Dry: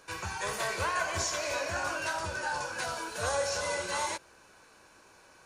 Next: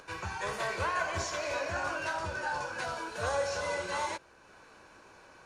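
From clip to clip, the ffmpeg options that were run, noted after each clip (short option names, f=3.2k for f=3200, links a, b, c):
-af "aemphasis=mode=reproduction:type=50kf,acompressor=mode=upward:threshold=-49dB:ratio=2.5"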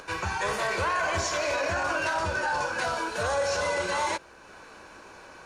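-af "equalizer=f=120:t=o:w=0.56:g=-4,alimiter=level_in=3dB:limit=-24dB:level=0:latency=1:release=16,volume=-3dB,volume=8dB"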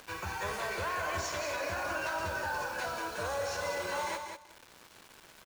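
-af "acrusher=bits=6:mix=0:aa=0.000001,aecho=1:1:190|380|570:0.473|0.0852|0.0153,volume=-8dB"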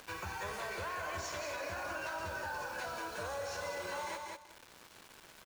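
-af "acompressor=threshold=-39dB:ratio=2,volume=-1dB"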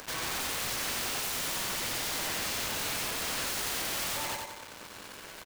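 -af "aeval=exprs='(mod(94.4*val(0)+1,2)-1)/94.4':c=same,aecho=1:1:90|180|270|360|450:0.668|0.267|0.107|0.0428|0.0171,volume=9dB"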